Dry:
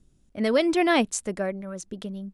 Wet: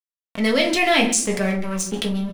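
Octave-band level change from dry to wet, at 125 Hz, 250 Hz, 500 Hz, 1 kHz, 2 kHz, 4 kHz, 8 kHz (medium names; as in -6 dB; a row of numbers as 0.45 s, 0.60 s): +10.0 dB, +4.0 dB, +2.5 dB, +4.0 dB, +8.0 dB, +10.0 dB, +11.0 dB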